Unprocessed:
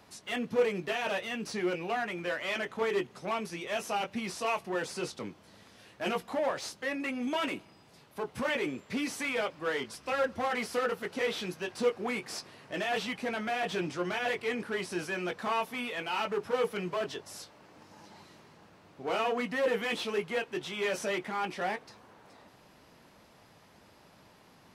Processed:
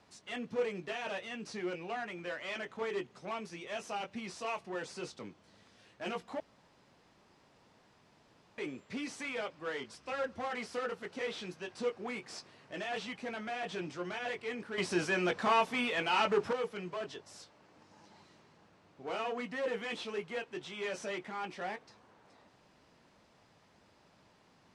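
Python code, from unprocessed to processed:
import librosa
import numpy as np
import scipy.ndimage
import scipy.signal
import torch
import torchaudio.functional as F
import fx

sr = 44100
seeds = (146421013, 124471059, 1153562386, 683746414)

y = fx.edit(x, sr, fx.room_tone_fill(start_s=6.4, length_s=2.18),
    fx.clip_gain(start_s=14.78, length_s=1.75, db=9.5), tone=tone)
y = scipy.signal.sosfilt(scipy.signal.butter(4, 8800.0, 'lowpass', fs=sr, output='sos'), y)
y = y * librosa.db_to_amplitude(-6.5)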